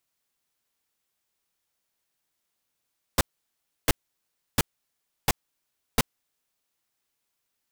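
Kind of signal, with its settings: noise bursts pink, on 0.03 s, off 0.67 s, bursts 5, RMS -19 dBFS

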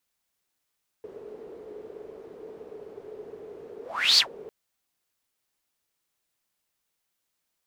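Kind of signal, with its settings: whoosh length 3.45 s, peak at 3.14, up 0.38 s, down 0.11 s, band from 430 Hz, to 4600 Hz, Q 9.8, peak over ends 25.5 dB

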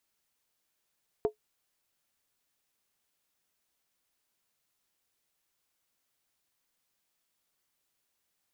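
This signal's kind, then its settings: skin hit, lowest mode 427 Hz, decay 0.11 s, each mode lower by 9.5 dB, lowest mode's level -19 dB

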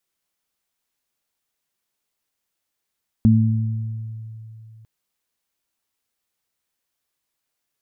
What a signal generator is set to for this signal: additive tone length 1.60 s, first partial 111 Hz, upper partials 1.5 dB, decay 3.07 s, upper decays 1.28 s, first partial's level -12.5 dB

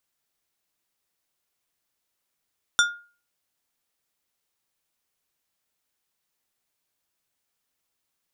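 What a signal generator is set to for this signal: glass hit plate, lowest mode 1420 Hz, decay 0.38 s, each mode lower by 3 dB, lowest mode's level -14 dB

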